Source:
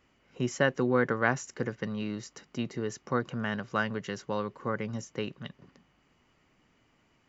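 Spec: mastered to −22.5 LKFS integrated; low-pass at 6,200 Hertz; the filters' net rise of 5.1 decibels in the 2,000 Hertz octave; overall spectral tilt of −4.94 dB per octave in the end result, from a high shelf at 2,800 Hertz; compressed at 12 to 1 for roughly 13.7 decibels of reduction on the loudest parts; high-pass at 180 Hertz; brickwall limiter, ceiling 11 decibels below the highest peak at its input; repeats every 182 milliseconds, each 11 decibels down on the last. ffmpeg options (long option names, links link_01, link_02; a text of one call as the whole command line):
ffmpeg -i in.wav -af "highpass=180,lowpass=6200,equalizer=frequency=2000:width_type=o:gain=8.5,highshelf=frequency=2800:gain=-4.5,acompressor=threshold=-31dB:ratio=12,alimiter=level_in=4.5dB:limit=-24dB:level=0:latency=1,volume=-4.5dB,aecho=1:1:182|364|546:0.282|0.0789|0.0221,volume=18.5dB" out.wav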